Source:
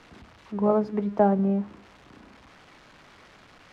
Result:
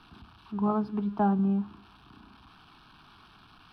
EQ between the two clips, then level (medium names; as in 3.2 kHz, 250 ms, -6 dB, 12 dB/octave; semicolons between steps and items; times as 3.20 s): static phaser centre 2 kHz, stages 6; 0.0 dB